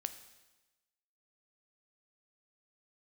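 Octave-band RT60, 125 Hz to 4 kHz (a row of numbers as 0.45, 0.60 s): 1.1, 1.1, 1.1, 1.1, 1.1, 1.1 s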